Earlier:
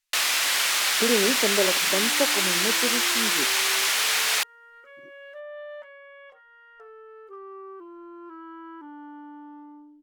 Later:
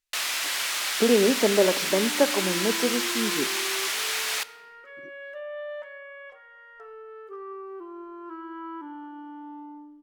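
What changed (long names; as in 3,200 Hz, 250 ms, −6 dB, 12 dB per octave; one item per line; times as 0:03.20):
speech +3.5 dB
first sound −6.0 dB
reverb: on, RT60 1.3 s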